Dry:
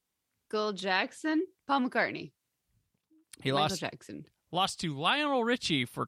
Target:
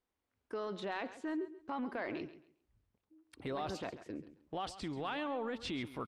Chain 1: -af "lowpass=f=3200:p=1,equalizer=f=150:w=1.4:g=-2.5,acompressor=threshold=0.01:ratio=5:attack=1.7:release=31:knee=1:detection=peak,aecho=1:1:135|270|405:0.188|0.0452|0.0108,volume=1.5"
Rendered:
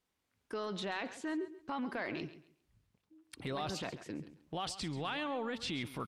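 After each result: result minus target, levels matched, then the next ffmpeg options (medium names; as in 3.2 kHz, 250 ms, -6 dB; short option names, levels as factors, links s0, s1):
4 kHz band +4.0 dB; 125 Hz band +3.0 dB
-af "lowpass=f=920:p=1,equalizer=f=150:w=1.4:g=-2.5,acompressor=threshold=0.01:ratio=5:attack=1.7:release=31:knee=1:detection=peak,aecho=1:1:135|270|405:0.188|0.0452|0.0108,volume=1.5"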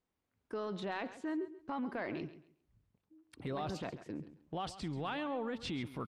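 125 Hz band +4.5 dB
-af "lowpass=f=920:p=1,equalizer=f=150:w=1.4:g=-11.5,acompressor=threshold=0.01:ratio=5:attack=1.7:release=31:knee=1:detection=peak,aecho=1:1:135|270|405:0.188|0.0452|0.0108,volume=1.5"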